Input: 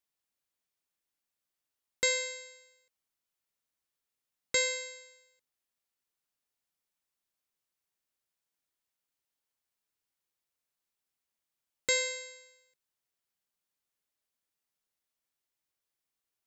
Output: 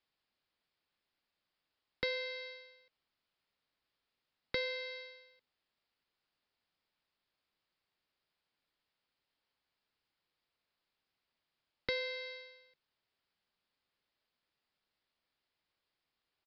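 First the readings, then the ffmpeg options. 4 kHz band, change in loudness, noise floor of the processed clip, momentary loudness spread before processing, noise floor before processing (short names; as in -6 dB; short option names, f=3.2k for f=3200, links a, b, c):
-6.5 dB, -8.5 dB, under -85 dBFS, 16 LU, under -85 dBFS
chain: -filter_complex "[0:a]acrossover=split=310[a][b];[b]acompressor=threshold=-43dB:ratio=3[c];[a][c]amix=inputs=2:normalize=0,aresample=11025,asoftclip=type=tanh:threshold=-27dB,aresample=44100,volume=6dB"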